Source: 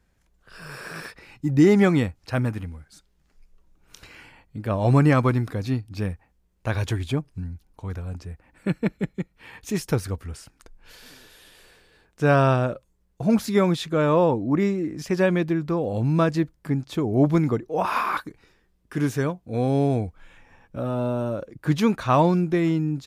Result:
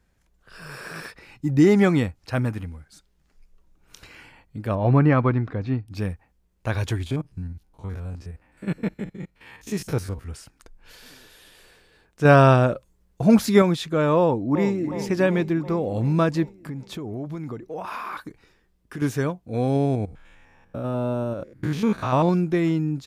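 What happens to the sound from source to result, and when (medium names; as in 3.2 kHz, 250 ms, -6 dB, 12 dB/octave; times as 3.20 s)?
4.75–5.88 s: low-pass 2.4 kHz
7.06–10.28 s: spectrogram pixelated in time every 50 ms
12.25–13.62 s: gain +4.5 dB
14.19–14.85 s: echo throw 360 ms, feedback 65%, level -10 dB
16.57–19.02 s: compression, threshold -29 dBFS
19.76–22.29 s: spectrogram pixelated in time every 100 ms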